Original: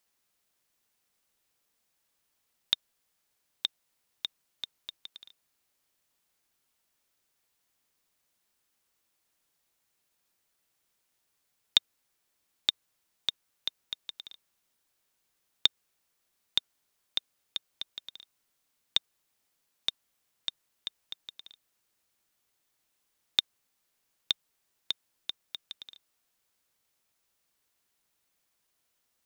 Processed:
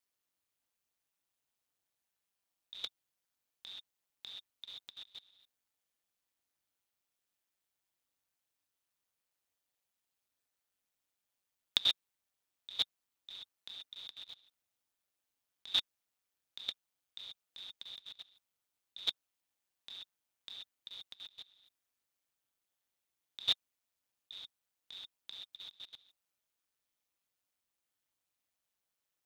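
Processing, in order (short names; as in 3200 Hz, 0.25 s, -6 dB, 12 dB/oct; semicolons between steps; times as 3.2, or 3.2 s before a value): non-linear reverb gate 0.15 s rising, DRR -7.5 dB; level quantiser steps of 20 dB; ring modulator 96 Hz; gain -5 dB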